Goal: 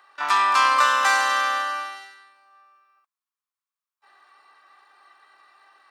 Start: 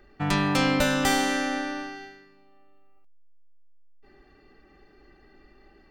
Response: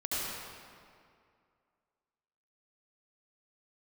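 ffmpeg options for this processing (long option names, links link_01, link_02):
-filter_complex "[0:a]asplit=2[link_01][link_02];[link_02]asetrate=88200,aresample=44100,atempo=0.5,volume=-6dB[link_03];[link_01][link_03]amix=inputs=2:normalize=0,acrossover=split=9900[link_04][link_05];[link_05]acompressor=threshold=-54dB:ratio=4:attack=1:release=60[link_06];[link_04][link_06]amix=inputs=2:normalize=0,highpass=frequency=1100:width_type=q:width=4.9"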